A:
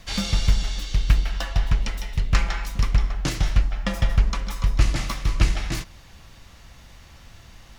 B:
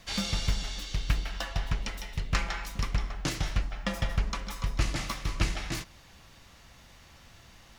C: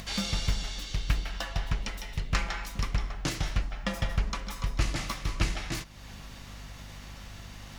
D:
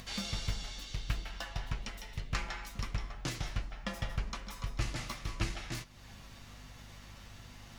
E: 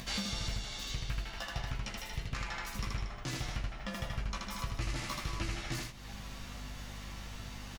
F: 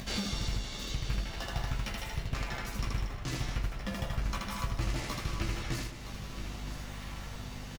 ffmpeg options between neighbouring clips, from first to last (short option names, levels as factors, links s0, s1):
-af "lowshelf=f=100:g=-8,volume=0.631"
-af "aeval=exprs='val(0)+0.00251*(sin(2*PI*50*n/s)+sin(2*PI*2*50*n/s)/2+sin(2*PI*3*50*n/s)/3+sin(2*PI*4*50*n/s)/4+sin(2*PI*5*50*n/s)/5)':c=same,acompressor=mode=upward:threshold=0.0178:ratio=2.5"
-af "flanger=delay=8:depth=1.1:regen=59:speed=1.2:shape=triangular,volume=0.794"
-filter_complex "[0:a]asplit=2[s0][s1];[s1]aecho=0:1:15|79:0.596|0.708[s2];[s0][s2]amix=inputs=2:normalize=0,alimiter=level_in=1.78:limit=0.0631:level=0:latency=1:release=345,volume=0.562,volume=1.5"
-filter_complex "[0:a]asplit=2[s0][s1];[s1]acrusher=samples=31:mix=1:aa=0.000001:lfo=1:lforange=49.6:lforate=0.39,volume=0.562[s2];[s0][s2]amix=inputs=2:normalize=0,aecho=1:1:967:0.266"